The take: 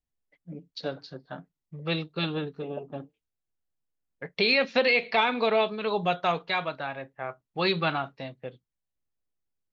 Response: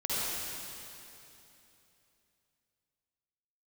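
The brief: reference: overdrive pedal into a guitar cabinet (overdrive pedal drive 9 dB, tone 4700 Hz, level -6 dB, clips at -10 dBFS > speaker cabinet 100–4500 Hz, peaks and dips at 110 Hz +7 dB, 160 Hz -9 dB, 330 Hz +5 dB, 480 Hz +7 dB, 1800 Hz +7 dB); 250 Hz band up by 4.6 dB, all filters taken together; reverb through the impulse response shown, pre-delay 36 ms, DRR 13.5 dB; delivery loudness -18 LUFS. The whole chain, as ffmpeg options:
-filter_complex "[0:a]equalizer=f=250:t=o:g=4.5,asplit=2[a][b];[1:a]atrim=start_sample=2205,adelay=36[c];[b][c]afir=irnorm=-1:irlink=0,volume=-22dB[d];[a][d]amix=inputs=2:normalize=0,asplit=2[e][f];[f]highpass=f=720:p=1,volume=9dB,asoftclip=type=tanh:threshold=-10dB[g];[e][g]amix=inputs=2:normalize=0,lowpass=f=4.7k:p=1,volume=-6dB,highpass=100,equalizer=f=110:t=q:w=4:g=7,equalizer=f=160:t=q:w=4:g=-9,equalizer=f=330:t=q:w=4:g=5,equalizer=f=480:t=q:w=4:g=7,equalizer=f=1.8k:t=q:w=4:g=7,lowpass=f=4.5k:w=0.5412,lowpass=f=4.5k:w=1.3066,volume=5dB"

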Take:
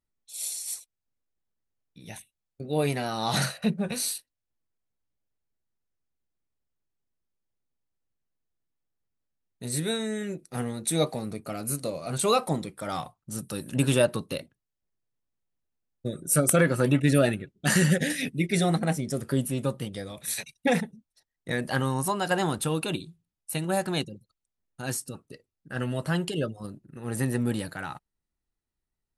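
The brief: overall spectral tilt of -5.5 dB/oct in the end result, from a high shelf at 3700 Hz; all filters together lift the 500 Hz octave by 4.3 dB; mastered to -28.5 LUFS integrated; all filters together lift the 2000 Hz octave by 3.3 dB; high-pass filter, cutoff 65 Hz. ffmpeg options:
-af "highpass=65,equalizer=f=500:t=o:g=5,equalizer=f=2k:t=o:g=5.5,highshelf=f=3.7k:g=-7,volume=-2.5dB"

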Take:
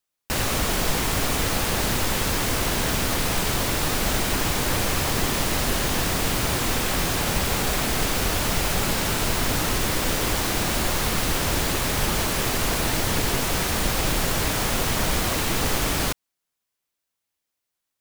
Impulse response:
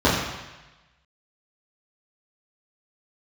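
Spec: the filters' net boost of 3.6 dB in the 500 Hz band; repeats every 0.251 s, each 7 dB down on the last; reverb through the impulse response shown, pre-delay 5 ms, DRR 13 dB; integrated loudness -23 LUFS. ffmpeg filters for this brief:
-filter_complex "[0:a]equalizer=f=500:t=o:g=4.5,aecho=1:1:251|502|753|1004|1255:0.447|0.201|0.0905|0.0407|0.0183,asplit=2[a][b];[1:a]atrim=start_sample=2205,adelay=5[c];[b][c]afir=irnorm=-1:irlink=0,volume=-34.5dB[d];[a][d]amix=inputs=2:normalize=0,volume=-2dB"

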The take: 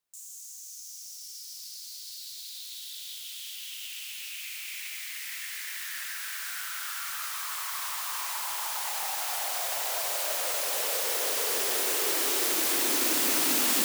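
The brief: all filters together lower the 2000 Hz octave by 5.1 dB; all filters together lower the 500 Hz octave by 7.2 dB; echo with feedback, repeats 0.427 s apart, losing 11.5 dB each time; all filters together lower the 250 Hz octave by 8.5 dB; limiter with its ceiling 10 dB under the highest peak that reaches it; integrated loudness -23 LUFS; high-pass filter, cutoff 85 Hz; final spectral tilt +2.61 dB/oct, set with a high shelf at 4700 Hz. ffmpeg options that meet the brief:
-af "highpass=85,equalizer=f=250:t=o:g=-8.5,equalizer=f=500:t=o:g=-6.5,equalizer=f=2k:t=o:g=-7,highshelf=f=4.7k:g=4.5,alimiter=limit=-19dB:level=0:latency=1,aecho=1:1:427|854|1281:0.266|0.0718|0.0194,volume=5.5dB"

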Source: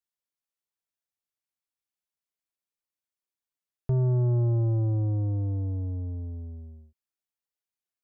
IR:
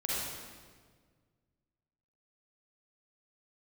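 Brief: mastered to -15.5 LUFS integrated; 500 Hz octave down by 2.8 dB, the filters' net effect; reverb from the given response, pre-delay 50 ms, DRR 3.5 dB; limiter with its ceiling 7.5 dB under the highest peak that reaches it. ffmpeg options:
-filter_complex "[0:a]equalizer=f=500:t=o:g=-4.5,alimiter=level_in=4.5dB:limit=-24dB:level=0:latency=1,volume=-4.5dB,asplit=2[a][b];[1:a]atrim=start_sample=2205,adelay=50[c];[b][c]afir=irnorm=-1:irlink=0,volume=-9.5dB[d];[a][d]amix=inputs=2:normalize=0,volume=15.5dB"

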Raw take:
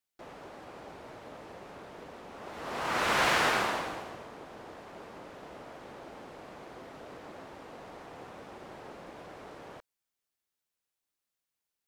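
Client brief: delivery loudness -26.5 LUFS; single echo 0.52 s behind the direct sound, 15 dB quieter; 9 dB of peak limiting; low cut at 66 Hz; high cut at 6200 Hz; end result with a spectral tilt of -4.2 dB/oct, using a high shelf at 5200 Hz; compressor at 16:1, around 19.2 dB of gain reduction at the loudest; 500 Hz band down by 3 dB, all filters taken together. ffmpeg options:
-af "highpass=66,lowpass=6.2k,equalizer=f=500:t=o:g=-4,highshelf=f=5.2k:g=6.5,acompressor=threshold=-42dB:ratio=16,alimiter=level_in=18.5dB:limit=-24dB:level=0:latency=1,volume=-18.5dB,aecho=1:1:520:0.178,volume=24.5dB"

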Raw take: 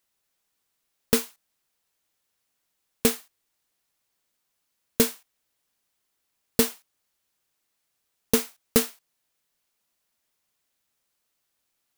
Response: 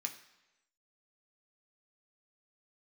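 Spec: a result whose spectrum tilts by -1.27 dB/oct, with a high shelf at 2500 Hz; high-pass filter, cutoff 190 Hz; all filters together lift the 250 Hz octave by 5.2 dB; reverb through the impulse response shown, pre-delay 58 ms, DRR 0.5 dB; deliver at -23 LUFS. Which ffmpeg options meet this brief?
-filter_complex "[0:a]highpass=190,equalizer=f=250:t=o:g=7,highshelf=f=2.5k:g=8,asplit=2[a][b];[1:a]atrim=start_sample=2205,adelay=58[c];[b][c]afir=irnorm=-1:irlink=0,volume=0.5dB[d];[a][d]amix=inputs=2:normalize=0,volume=-6dB"

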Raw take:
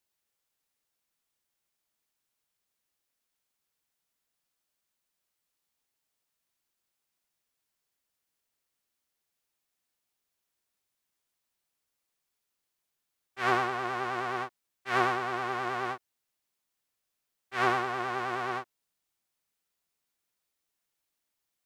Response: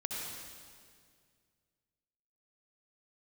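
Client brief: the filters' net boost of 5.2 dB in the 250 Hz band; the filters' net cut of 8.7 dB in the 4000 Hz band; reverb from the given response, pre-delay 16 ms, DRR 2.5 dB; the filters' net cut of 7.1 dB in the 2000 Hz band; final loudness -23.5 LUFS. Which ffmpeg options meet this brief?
-filter_complex "[0:a]equalizer=f=250:t=o:g=8,equalizer=f=2k:t=o:g=-9,equalizer=f=4k:t=o:g=-8,asplit=2[a][b];[1:a]atrim=start_sample=2205,adelay=16[c];[b][c]afir=irnorm=-1:irlink=0,volume=-5dB[d];[a][d]amix=inputs=2:normalize=0,volume=7dB"

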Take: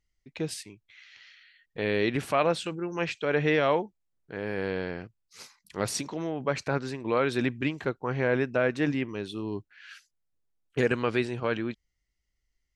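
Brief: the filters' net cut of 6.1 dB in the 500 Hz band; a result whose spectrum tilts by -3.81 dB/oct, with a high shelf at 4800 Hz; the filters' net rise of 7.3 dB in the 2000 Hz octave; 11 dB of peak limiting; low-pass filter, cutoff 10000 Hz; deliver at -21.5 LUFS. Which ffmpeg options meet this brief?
-af "lowpass=10k,equalizer=f=500:t=o:g=-8,equalizer=f=2k:t=o:g=8.5,highshelf=f=4.8k:g=6,volume=11.5dB,alimiter=limit=-8dB:level=0:latency=1"

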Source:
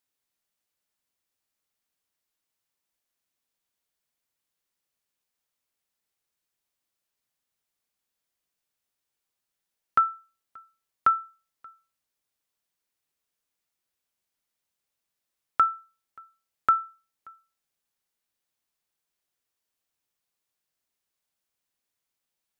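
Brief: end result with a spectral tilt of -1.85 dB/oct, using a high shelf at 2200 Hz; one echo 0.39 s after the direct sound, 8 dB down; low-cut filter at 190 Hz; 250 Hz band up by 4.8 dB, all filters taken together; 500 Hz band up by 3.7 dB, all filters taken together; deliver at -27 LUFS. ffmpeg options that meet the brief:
-af "highpass=190,equalizer=f=250:t=o:g=6.5,equalizer=f=500:t=o:g=3.5,highshelf=f=2.2k:g=-6.5,aecho=1:1:390:0.398,volume=2.5dB"

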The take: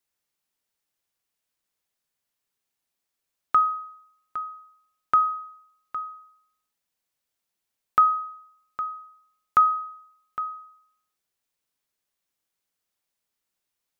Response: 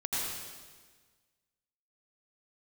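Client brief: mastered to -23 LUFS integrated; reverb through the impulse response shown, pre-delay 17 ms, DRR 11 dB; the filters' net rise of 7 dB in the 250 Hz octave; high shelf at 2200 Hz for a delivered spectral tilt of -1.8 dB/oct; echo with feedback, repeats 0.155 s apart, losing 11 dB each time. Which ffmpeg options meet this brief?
-filter_complex "[0:a]equalizer=f=250:t=o:g=9,highshelf=f=2.2k:g=5.5,aecho=1:1:155|310|465:0.282|0.0789|0.0221,asplit=2[a][b];[1:a]atrim=start_sample=2205,adelay=17[c];[b][c]afir=irnorm=-1:irlink=0,volume=-17.5dB[d];[a][d]amix=inputs=2:normalize=0,volume=1.5dB"

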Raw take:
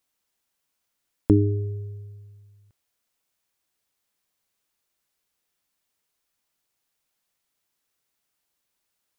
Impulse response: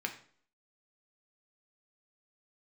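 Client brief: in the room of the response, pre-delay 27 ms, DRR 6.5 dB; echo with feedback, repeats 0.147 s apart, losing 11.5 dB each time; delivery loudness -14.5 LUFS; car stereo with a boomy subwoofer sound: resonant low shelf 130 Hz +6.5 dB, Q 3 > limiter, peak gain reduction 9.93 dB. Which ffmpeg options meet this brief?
-filter_complex "[0:a]aecho=1:1:147|294|441:0.266|0.0718|0.0194,asplit=2[a][b];[1:a]atrim=start_sample=2205,adelay=27[c];[b][c]afir=irnorm=-1:irlink=0,volume=-9.5dB[d];[a][d]amix=inputs=2:normalize=0,lowshelf=f=130:t=q:w=3:g=6.5,volume=6.5dB,alimiter=limit=-5dB:level=0:latency=1"

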